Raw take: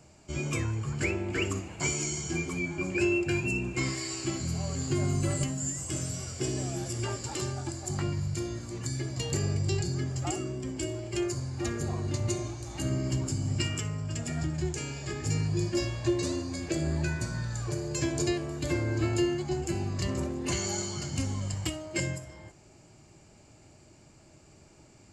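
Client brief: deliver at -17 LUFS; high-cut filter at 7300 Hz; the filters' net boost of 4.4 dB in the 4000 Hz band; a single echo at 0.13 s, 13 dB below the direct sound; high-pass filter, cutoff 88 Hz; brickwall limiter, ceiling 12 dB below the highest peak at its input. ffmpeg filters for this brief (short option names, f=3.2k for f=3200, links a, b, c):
-af "highpass=88,lowpass=7.3k,equalizer=f=4k:t=o:g=6.5,alimiter=level_in=2.5dB:limit=-24dB:level=0:latency=1,volume=-2.5dB,aecho=1:1:130:0.224,volume=18dB"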